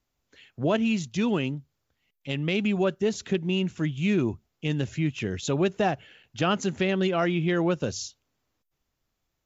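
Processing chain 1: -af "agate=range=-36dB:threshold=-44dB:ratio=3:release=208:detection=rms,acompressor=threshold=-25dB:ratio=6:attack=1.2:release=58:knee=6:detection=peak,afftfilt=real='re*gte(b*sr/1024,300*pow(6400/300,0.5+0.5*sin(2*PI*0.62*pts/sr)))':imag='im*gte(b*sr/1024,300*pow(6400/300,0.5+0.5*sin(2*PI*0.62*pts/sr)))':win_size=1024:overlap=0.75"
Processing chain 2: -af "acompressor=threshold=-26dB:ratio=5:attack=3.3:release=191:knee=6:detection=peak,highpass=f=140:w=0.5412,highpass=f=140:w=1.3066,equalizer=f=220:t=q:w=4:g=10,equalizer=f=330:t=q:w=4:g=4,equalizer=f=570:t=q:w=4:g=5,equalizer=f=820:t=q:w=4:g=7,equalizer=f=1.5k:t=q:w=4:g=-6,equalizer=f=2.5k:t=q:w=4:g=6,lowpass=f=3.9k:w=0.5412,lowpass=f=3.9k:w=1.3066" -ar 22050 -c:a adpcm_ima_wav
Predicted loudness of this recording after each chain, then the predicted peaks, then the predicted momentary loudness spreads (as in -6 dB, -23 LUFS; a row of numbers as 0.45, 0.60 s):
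-38.0, -27.5 LUFS; -21.0, -13.5 dBFS; 16, 10 LU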